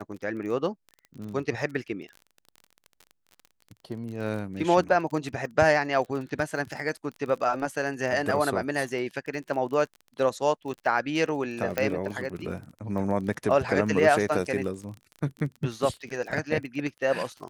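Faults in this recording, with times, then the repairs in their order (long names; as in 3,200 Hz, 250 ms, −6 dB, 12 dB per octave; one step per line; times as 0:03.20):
surface crackle 27 per second −35 dBFS
0:11.78: click −12 dBFS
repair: click removal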